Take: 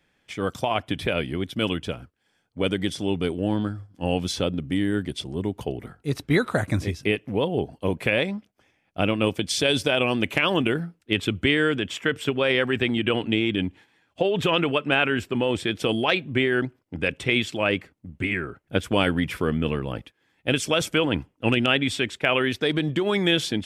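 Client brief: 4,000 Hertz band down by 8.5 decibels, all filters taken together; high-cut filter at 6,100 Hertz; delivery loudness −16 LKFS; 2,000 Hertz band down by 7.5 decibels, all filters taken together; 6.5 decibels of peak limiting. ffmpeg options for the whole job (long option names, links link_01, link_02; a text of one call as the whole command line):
ffmpeg -i in.wav -af "lowpass=6100,equalizer=frequency=2000:width_type=o:gain=-7.5,equalizer=frequency=4000:width_type=o:gain=-8,volume=11.5dB,alimiter=limit=-3dB:level=0:latency=1" out.wav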